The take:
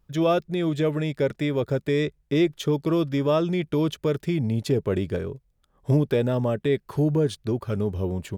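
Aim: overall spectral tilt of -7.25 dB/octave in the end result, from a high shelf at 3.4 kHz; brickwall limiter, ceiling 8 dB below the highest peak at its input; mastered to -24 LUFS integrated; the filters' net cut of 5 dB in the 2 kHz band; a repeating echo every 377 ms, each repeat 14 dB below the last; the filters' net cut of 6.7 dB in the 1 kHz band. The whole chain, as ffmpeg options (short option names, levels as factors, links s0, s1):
-af "equalizer=f=1000:t=o:g=-9,equalizer=f=2000:t=o:g=-5.5,highshelf=f=3400:g=5,alimiter=limit=0.106:level=0:latency=1,aecho=1:1:377|754:0.2|0.0399,volume=1.68"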